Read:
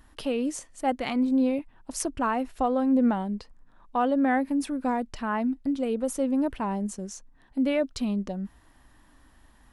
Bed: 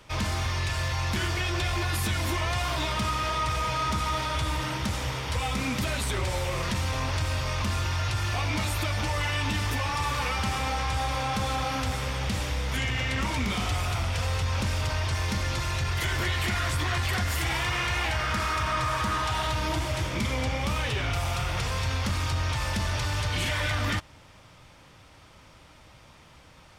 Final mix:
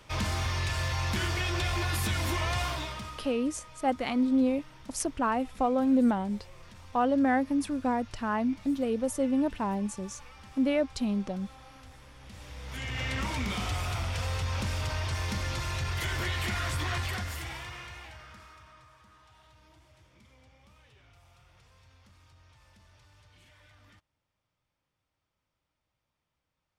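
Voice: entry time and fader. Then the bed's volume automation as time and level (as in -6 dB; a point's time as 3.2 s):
3.00 s, -1.5 dB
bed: 2.63 s -2 dB
3.45 s -23 dB
12.15 s -23 dB
13.04 s -4 dB
16.96 s -4 dB
18.99 s -31.5 dB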